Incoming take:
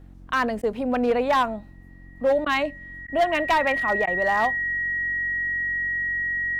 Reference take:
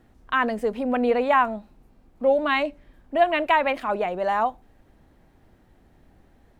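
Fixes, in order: clip repair -15 dBFS; de-hum 45.5 Hz, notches 7; notch 1900 Hz, Q 30; interpolate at 0.62/2.45/3.07/4.06, 11 ms

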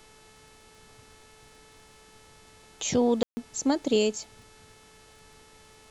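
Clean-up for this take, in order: de-click; de-hum 435.4 Hz, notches 26; room tone fill 3.23–3.37; expander -47 dBFS, range -21 dB

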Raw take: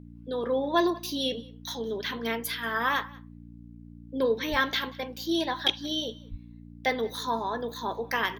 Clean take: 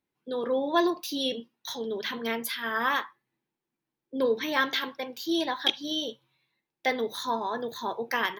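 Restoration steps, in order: de-hum 58.2 Hz, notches 5; 4.5–4.62 HPF 140 Hz 24 dB/oct; 6.3–6.42 HPF 140 Hz 24 dB/oct; inverse comb 0.185 s -23.5 dB

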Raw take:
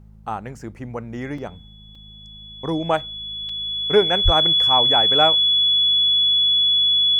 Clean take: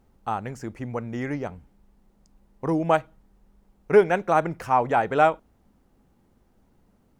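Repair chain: de-hum 52.8 Hz, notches 4; notch 3400 Hz, Q 30; de-plosive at 4.24; interpolate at 1.38/1.95/3.49, 3.7 ms

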